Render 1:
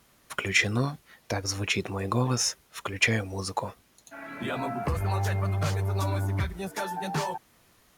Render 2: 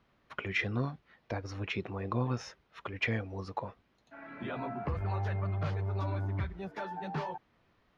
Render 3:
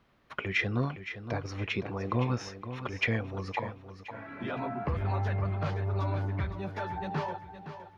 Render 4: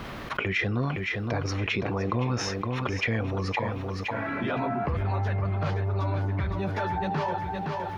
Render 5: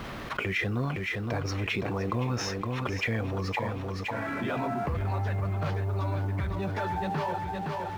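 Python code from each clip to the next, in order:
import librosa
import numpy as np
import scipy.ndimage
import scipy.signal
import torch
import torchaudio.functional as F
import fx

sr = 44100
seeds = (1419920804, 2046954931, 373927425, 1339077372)

y1 = fx.air_absorb(x, sr, metres=280.0)
y1 = y1 * 10.0 ** (-5.5 / 20.0)
y2 = fx.echo_feedback(y1, sr, ms=515, feedback_pct=34, wet_db=-11.0)
y2 = y2 * 10.0 ** (3.0 / 20.0)
y3 = fx.env_flatten(y2, sr, amount_pct=70)
y4 = fx.law_mismatch(y3, sr, coded='mu')
y4 = y4 * 10.0 ** (-3.0 / 20.0)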